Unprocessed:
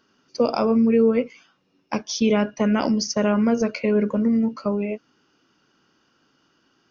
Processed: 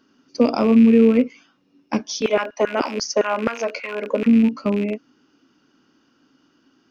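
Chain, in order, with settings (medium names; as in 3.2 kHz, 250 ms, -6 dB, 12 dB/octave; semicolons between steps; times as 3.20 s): rattle on loud lows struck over -35 dBFS, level -23 dBFS; peaking EQ 270 Hz +11 dB 0.55 oct; 2.20–4.26 s: LFO high-pass saw down 9.3 Hz -> 1.9 Hz 390–1500 Hz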